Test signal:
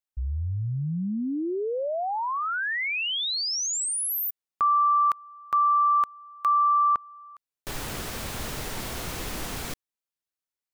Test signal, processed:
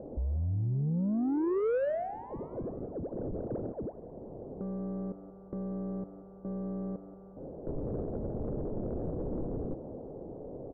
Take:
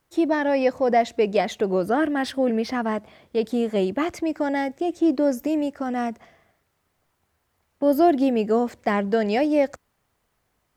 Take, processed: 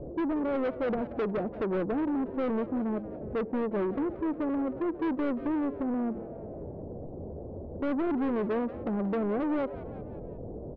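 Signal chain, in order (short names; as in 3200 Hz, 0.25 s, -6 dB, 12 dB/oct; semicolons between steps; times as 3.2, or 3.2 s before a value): delta modulation 16 kbps, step -33 dBFS; steep low-pass 560 Hz 36 dB/oct; low shelf 180 Hz -7 dB; in parallel at +1.5 dB: compressor 10:1, threshold -34 dBFS; on the sum: soft clip -26.5 dBFS; hum 50 Hz, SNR 29 dB; on a send: frequency-shifting echo 0.18 s, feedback 50%, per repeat +100 Hz, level -16 dB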